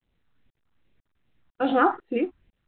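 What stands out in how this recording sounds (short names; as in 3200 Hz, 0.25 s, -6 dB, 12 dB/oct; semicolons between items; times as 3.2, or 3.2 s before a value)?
phasing stages 4, 2.5 Hz, lowest notch 510–1200 Hz; tremolo saw up 2 Hz, depth 100%; µ-law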